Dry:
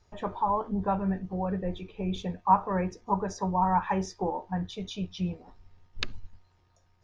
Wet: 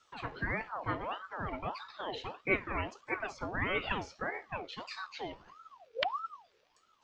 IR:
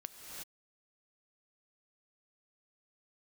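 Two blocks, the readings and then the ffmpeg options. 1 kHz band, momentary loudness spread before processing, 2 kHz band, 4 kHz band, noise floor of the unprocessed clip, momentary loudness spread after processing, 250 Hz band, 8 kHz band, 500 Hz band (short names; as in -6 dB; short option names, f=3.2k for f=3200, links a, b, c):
-10.5 dB, 12 LU, +7.5 dB, -1.0 dB, -66 dBFS, 12 LU, -12.5 dB, n/a, -5.5 dB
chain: -filter_complex "[0:a]acrossover=split=2800[a][b];[b]acompressor=threshold=-55dB:ratio=4:attack=1:release=60[c];[a][c]amix=inputs=2:normalize=0,equalizer=f=125:t=o:w=1:g=-11,equalizer=f=250:t=o:w=1:g=-6,equalizer=f=1k:t=o:w=1:g=-8,equalizer=f=2k:t=o:w=1:g=9,equalizer=f=4k:t=o:w=1:g=6,aeval=exprs='val(0)*sin(2*PI*890*n/s+890*0.5/1.6*sin(2*PI*1.6*n/s))':c=same"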